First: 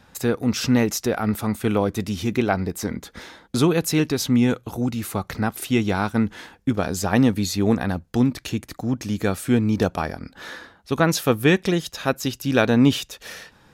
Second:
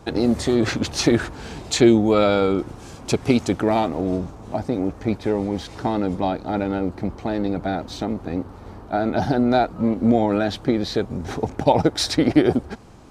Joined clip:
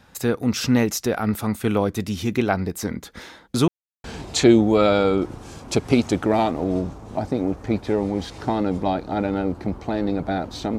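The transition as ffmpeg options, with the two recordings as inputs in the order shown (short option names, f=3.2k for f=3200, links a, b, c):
-filter_complex "[0:a]apad=whole_dur=10.78,atrim=end=10.78,asplit=2[a][b];[a]atrim=end=3.68,asetpts=PTS-STARTPTS,afade=t=out:st=3.676:d=0.004:c=hsin[c];[b]atrim=start=3.68:end=4.04,asetpts=PTS-STARTPTS,volume=0[d];[1:a]atrim=start=1.41:end=8.15,asetpts=PTS-STARTPTS,afade=t=in:d=0.004:c=hsin[e];[c][d][e]concat=n=3:v=0:a=1"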